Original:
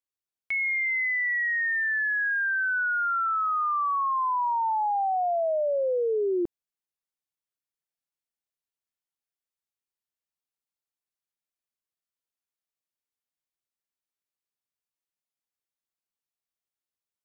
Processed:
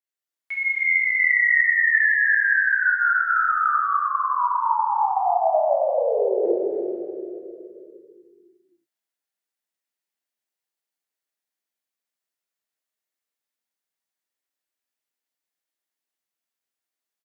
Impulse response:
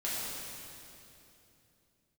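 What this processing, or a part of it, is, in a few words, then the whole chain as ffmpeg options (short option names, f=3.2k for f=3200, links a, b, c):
stadium PA: -filter_complex "[0:a]highpass=250,equalizer=f=1.8k:t=o:w=0.31:g=4,aecho=1:1:256.6|288.6:0.316|0.501[a];[1:a]atrim=start_sample=2205[b];[a][b]afir=irnorm=-1:irlink=0,asplit=3[c][d][e];[c]afade=t=out:st=3.34:d=0.02[f];[d]aemphasis=mode=production:type=75kf,afade=t=in:st=3.34:d=0.02,afade=t=out:st=3.83:d=0.02[g];[e]afade=t=in:st=3.83:d=0.02[h];[f][g][h]amix=inputs=3:normalize=0,volume=-2.5dB"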